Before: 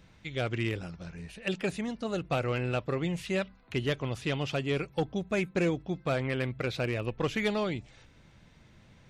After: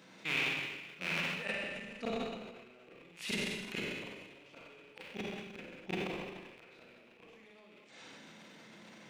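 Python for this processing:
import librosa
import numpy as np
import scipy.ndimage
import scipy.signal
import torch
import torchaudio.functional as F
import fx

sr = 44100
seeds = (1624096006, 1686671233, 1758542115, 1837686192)

p1 = fx.rattle_buzz(x, sr, strikes_db=-44.0, level_db=-24.0)
p2 = scipy.signal.sosfilt(scipy.signal.butter(4, 200.0, 'highpass', fs=sr, output='sos'), p1)
p3 = fx.gate_flip(p2, sr, shuts_db=-24.0, range_db=-36)
p4 = p3 + fx.echo_single(p3, sr, ms=233, db=-21.0, dry=0)
p5 = fx.rev_schroeder(p4, sr, rt60_s=1.3, comb_ms=33, drr_db=-1.5)
p6 = fx.transient(p5, sr, attack_db=-6, sustain_db=11)
y = p6 * librosa.db_to_amplitude(3.0)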